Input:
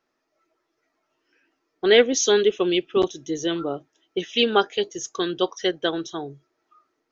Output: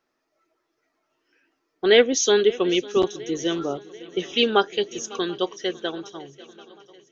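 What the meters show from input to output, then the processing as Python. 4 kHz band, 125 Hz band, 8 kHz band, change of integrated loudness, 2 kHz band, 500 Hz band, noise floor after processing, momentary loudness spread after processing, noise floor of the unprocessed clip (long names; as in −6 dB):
−0.5 dB, −0.5 dB, can't be measured, 0.0 dB, 0.0 dB, 0.0 dB, −76 dBFS, 14 LU, −76 dBFS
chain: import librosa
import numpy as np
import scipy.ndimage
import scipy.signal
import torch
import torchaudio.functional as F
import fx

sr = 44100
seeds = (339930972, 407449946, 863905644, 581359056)

y = fx.fade_out_tail(x, sr, length_s=2.17)
y = fx.echo_swing(y, sr, ms=737, ratio=3, feedback_pct=54, wet_db=-21)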